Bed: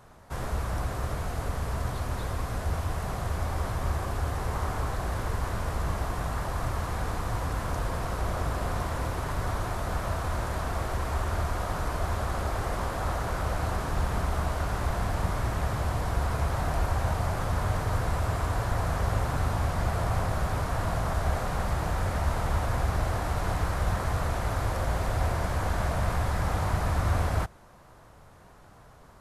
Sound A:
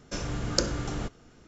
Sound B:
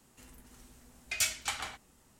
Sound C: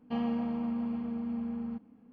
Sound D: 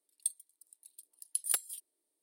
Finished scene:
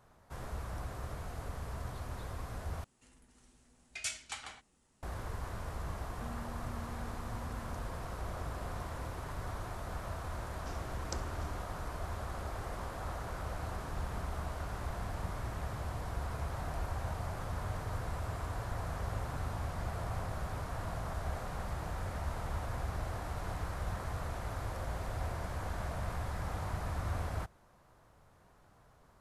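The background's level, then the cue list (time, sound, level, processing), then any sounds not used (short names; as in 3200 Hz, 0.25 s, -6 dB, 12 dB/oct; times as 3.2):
bed -10.5 dB
2.84 replace with B -8 dB + steep low-pass 11000 Hz 96 dB/oct
6.09 add C -17 dB
10.54 add A -16.5 dB + Doppler distortion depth 0.28 ms
not used: D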